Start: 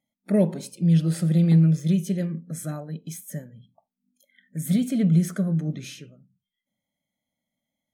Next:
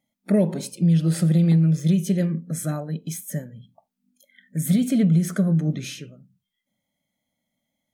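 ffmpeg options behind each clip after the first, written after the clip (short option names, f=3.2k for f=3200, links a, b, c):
-af "acompressor=threshold=-20dB:ratio=5,volume=5dB"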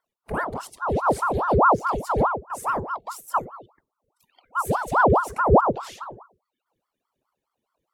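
-af "aphaser=in_gain=1:out_gain=1:delay=2.5:decay=0.49:speed=1.8:type=triangular,asubboost=boost=6:cutoff=160,aeval=exprs='val(0)*sin(2*PI*740*n/s+740*0.7/4.8*sin(2*PI*4.8*n/s))':c=same,volume=-5dB"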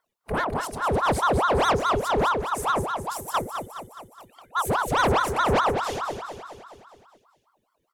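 -af "asoftclip=type=tanh:threshold=-22.5dB,aecho=1:1:209|418|627|836|1045|1254|1463:0.398|0.227|0.129|0.0737|0.042|0.024|0.0137,volume=4dB"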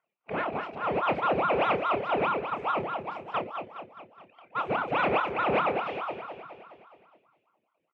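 -filter_complex "[0:a]asplit=2[a][b];[b]acrusher=samples=27:mix=1:aa=0.000001:lfo=1:lforange=16.2:lforate=3.6,volume=-10dB[c];[a][c]amix=inputs=2:normalize=0,highpass=220,equalizer=f=250:t=q:w=4:g=-5,equalizer=f=420:t=q:w=4:g=-5,equalizer=f=990:t=q:w=4:g=-4,equalizer=f=1.7k:t=q:w=4:g=-6,equalizer=f=2.5k:t=q:w=4:g=10,lowpass=f=2.6k:w=0.5412,lowpass=f=2.6k:w=1.3066,asplit=2[d][e];[e]adelay=30,volume=-10dB[f];[d][f]amix=inputs=2:normalize=0,volume=-3dB"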